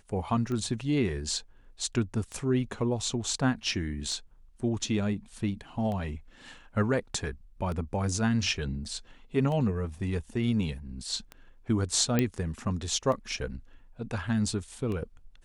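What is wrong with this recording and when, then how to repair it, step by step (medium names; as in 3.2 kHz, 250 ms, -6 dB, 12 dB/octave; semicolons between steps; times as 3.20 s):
tick 33 1/3 rpm -24 dBFS
12.19 s: pop -11 dBFS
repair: de-click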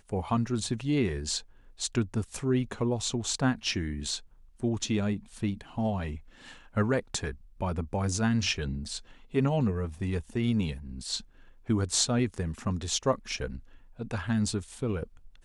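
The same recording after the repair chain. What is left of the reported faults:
nothing left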